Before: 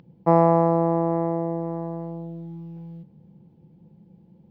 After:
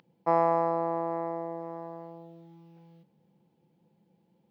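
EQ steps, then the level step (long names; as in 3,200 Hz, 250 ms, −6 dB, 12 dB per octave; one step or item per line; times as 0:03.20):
high-pass filter 1,200 Hz 6 dB per octave
0.0 dB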